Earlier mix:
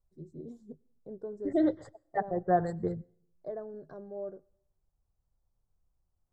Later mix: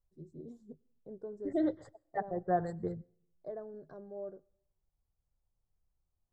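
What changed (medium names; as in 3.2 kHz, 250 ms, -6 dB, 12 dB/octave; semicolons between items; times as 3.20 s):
first voice -3.5 dB; second voice -4.5 dB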